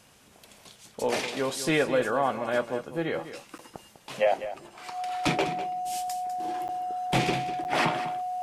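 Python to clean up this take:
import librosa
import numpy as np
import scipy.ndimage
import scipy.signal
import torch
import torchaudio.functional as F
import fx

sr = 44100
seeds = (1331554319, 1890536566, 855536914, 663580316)

y = fx.notch(x, sr, hz=730.0, q=30.0)
y = fx.fix_interpolate(y, sr, at_s=(3.58, 6.68, 7.64), length_ms=9.2)
y = fx.fix_echo_inverse(y, sr, delay_ms=200, level_db=-12.0)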